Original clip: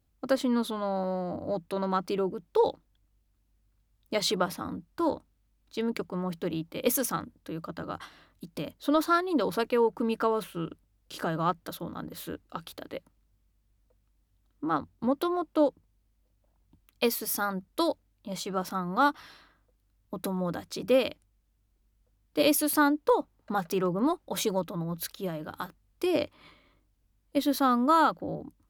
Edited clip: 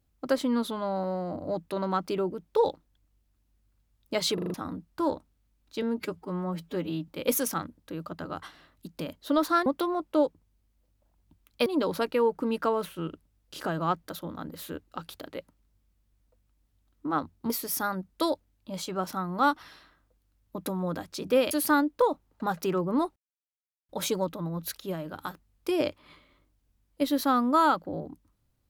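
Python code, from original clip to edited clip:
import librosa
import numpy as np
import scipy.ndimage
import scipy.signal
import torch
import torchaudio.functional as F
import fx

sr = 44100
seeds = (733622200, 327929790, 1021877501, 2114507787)

y = fx.edit(x, sr, fx.stutter_over(start_s=4.34, slice_s=0.04, count=5),
    fx.stretch_span(start_s=5.82, length_s=0.84, factor=1.5),
    fx.move(start_s=15.08, length_s=2.0, to_s=9.24),
    fx.cut(start_s=21.09, length_s=1.5),
    fx.insert_silence(at_s=24.24, length_s=0.73), tone=tone)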